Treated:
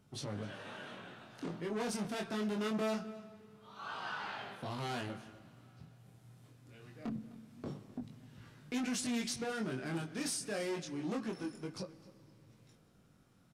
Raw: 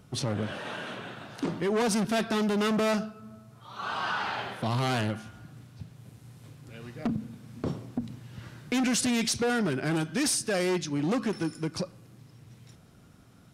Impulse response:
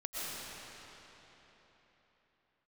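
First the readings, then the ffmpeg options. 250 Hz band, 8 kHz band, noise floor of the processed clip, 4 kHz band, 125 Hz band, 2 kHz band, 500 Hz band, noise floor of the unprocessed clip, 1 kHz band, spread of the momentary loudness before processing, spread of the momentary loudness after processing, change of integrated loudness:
-10.0 dB, -10.5 dB, -66 dBFS, -10.5 dB, -12.0 dB, -10.5 dB, -10.5 dB, -55 dBFS, -10.5 dB, 19 LU, 20 LU, -10.5 dB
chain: -filter_complex "[0:a]equalizer=f=87:w=4.8:g=-8,flanger=delay=19.5:depth=4.8:speed=0.24,asplit=2[s0][s1];[s1]adelay=256.6,volume=0.126,highshelf=f=4000:g=-5.77[s2];[s0][s2]amix=inputs=2:normalize=0,asplit=2[s3][s4];[1:a]atrim=start_sample=2205[s5];[s4][s5]afir=irnorm=-1:irlink=0,volume=0.075[s6];[s3][s6]amix=inputs=2:normalize=0,volume=0.398"

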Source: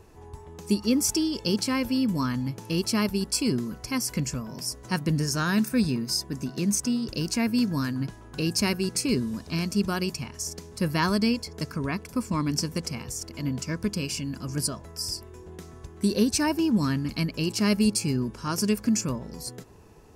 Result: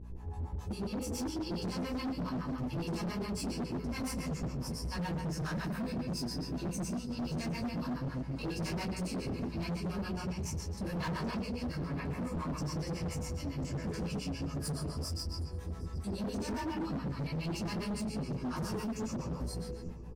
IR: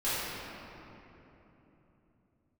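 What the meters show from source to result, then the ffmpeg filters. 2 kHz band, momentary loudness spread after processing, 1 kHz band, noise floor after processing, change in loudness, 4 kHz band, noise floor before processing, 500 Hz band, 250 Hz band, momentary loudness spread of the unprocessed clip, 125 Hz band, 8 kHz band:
-11.0 dB, 2 LU, -7.5 dB, -43 dBFS, -10.0 dB, -13.0 dB, -46 dBFS, -8.5 dB, -10.5 dB, 10 LU, -6.0 dB, -15.5 dB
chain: -filter_complex "[0:a]tiltshelf=f=650:g=7[s0];[1:a]atrim=start_sample=2205,afade=t=out:st=0.4:d=0.01,atrim=end_sample=18081[s1];[s0][s1]afir=irnorm=-1:irlink=0,acompressor=threshold=0.141:ratio=2.5,bandreject=f=1400:w=18,acrossover=split=590[s2][s3];[s2]aeval=exprs='val(0)*(1-1/2+1/2*cos(2*PI*7.2*n/s))':c=same[s4];[s3]aeval=exprs='val(0)*(1-1/2-1/2*cos(2*PI*7.2*n/s))':c=same[s5];[s4][s5]amix=inputs=2:normalize=0,aecho=1:1:762:0.0794,aeval=exprs='val(0)+0.0112*(sin(2*PI*60*n/s)+sin(2*PI*2*60*n/s)/2+sin(2*PI*3*60*n/s)/3+sin(2*PI*4*60*n/s)/4+sin(2*PI*5*60*n/s)/5)':c=same,equalizer=f=280:w=0.91:g=-5.5,asplit=2[s6][s7];[s7]adelay=12,volume=0.422[s8];[s6][s8]amix=inputs=2:normalize=0,asoftclip=type=hard:threshold=0.0422,volume=0.531"

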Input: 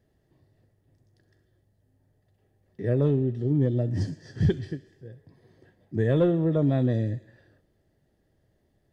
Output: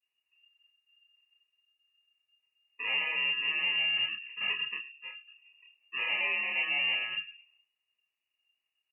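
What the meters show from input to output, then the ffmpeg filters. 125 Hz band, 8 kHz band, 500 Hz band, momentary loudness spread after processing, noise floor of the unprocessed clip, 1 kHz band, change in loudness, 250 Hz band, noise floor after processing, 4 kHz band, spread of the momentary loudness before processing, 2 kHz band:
under -35 dB, no reading, -23.5 dB, 15 LU, -70 dBFS, 0.0 dB, -3.5 dB, under -30 dB, under -85 dBFS, +19.5 dB, 11 LU, +16.5 dB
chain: -filter_complex "[0:a]afreqshift=88,aecho=1:1:105|210|315:0.168|0.052|0.0161,acrossover=split=260|430|1700[s0][s1][s2][s3];[s1]acompressor=threshold=0.00891:ratio=6[s4];[s0][s4][s2][s3]amix=inputs=4:normalize=0,acrusher=samples=29:mix=1:aa=0.000001,volume=26.6,asoftclip=hard,volume=0.0376,adynamicequalizer=threshold=0.001:dfrequency=1700:dqfactor=4.1:tfrequency=1700:tqfactor=4.1:attack=5:release=100:ratio=0.375:range=3.5:mode=cutabove:tftype=bell,afftdn=nr=20:nf=-50,asplit=2[s5][s6];[s6]adelay=28,volume=0.708[s7];[s5][s7]amix=inputs=2:normalize=0,bandreject=f=83.17:t=h:w=4,bandreject=f=166.34:t=h:w=4,bandreject=f=249.51:t=h:w=4,bandreject=f=332.68:t=h:w=4,bandreject=f=415.85:t=h:w=4,bandreject=f=499.02:t=h:w=4,bandreject=f=582.19:t=h:w=4,bandreject=f=665.36:t=h:w=4,bandreject=f=748.53:t=h:w=4,bandreject=f=831.7:t=h:w=4,bandreject=f=914.87:t=h:w=4,lowpass=f=2600:t=q:w=0.5098,lowpass=f=2600:t=q:w=0.6013,lowpass=f=2600:t=q:w=0.9,lowpass=f=2600:t=q:w=2.563,afreqshift=-3000,volume=0.841" -ar 48000 -c:a libopus -b:a 96k

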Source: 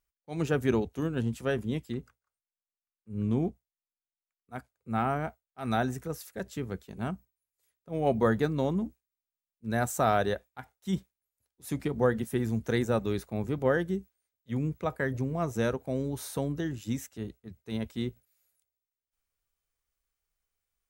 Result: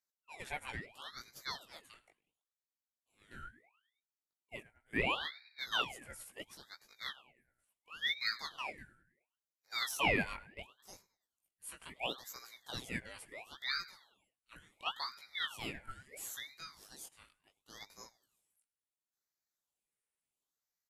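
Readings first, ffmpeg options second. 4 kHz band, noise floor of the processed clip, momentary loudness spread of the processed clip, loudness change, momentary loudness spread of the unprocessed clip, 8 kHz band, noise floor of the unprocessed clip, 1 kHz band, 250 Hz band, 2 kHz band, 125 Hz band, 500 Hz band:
+6.5 dB, under -85 dBFS, 19 LU, -8.0 dB, 13 LU, -4.5 dB, under -85 dBFS, -9.5 dB, -19.5 dB, -1.0 dB, -21.0 dB, -18.0 dB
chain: -filter_complex "[0:a]bandreject=f=7100:w=9.8,afftfilt=real='re*between(b*sr/4096,640,11000)':imag='im*between(b*sr/4096,640,11000)':win_size=4096:overlap=0.75,asplit=2[s0][s1];[s1]adelay=104,lowpass=f=2000:p=1,volume=0.141,asplit=2[s2][s3];[s3]adelay=104,lowpass=f=2000:p=1,volume=0.53,asplit=2[s4][s5];[s5]adelay=104,lowpass=f=2000:p=1,volume=0.53,asplit=2[s6][s7];[s7]adelay=104,lowpass=f=2000:p=1,volume=0.53,asplit=2[s8][s9];[s9]adelay=104,lowpass=f=2000:p=1,volume=0.53[s10];[s0][s2][s4][s6][s8][s10]amix=inputs=6:normalize=0,acrossover=split=2300[s11][s12];[s12]aexciter=amount=6.6:drive=6.8:freq=7600[s13];[s11][s13]amix=inputs=2:normalize=0,flanger=delay=15:depth=6.5:speed=0.15,asplit=2[s14][s15];[s15]highpass=f=720:p=1,volume=2.51,asoftclip=type=tanh:threshold=0.178[s16];[s14][s16]amix=inputs=2:normalize=0,lowpass=f=1300:p=1,volume=0.501,aeval=exprs='val(0)*sin(2*PI*1900*n/s+1900*0.65/0.72*sin(2*PI*0.72*n/s))':c=same,volume=1.19"

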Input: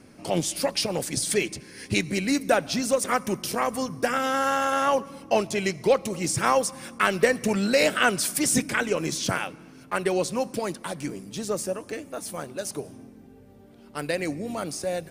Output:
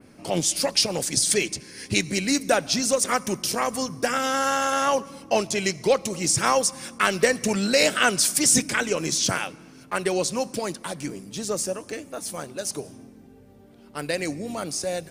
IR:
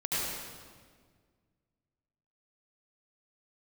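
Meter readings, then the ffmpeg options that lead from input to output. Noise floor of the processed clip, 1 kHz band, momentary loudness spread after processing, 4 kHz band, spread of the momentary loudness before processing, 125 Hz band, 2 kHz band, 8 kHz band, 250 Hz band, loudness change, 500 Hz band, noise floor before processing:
-50 dBFS, +0.5 dB, 13 LU, +5.0 dB, 12 LU, 0.0 dB, +1.0 dB, +6.5 dB, 0.0 dB, +2.0 dB, 0.0 dB, -50 dBFS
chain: -af "adynamicequalizer=threshold=0.00708:dfrequency=6200:dqfactor=0.77:tfrequency=6200:tqfactor=0.77:attack=5:release=100:ratio=0.375:range=4:mode=boostabove:tftype=bell"

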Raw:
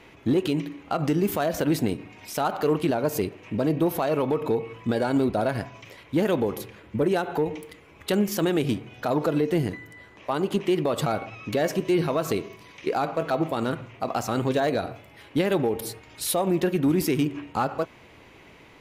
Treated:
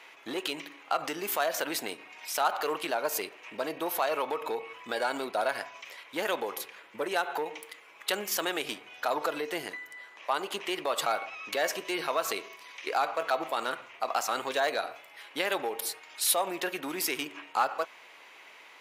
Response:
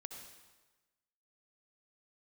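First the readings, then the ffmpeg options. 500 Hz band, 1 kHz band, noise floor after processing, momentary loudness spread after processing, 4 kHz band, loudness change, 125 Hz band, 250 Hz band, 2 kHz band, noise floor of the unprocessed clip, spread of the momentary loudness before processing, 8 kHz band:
-7.5 dB, -1.0 dB, -53 dBFS, 11 LU, +2.0 dB, -6.0 dB, -27.5 dB, -16.0 dB, +2.0 dB, -51 dBFS, 9 LU, +2.0 dB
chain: -af "highpass=840,volume=1.26"

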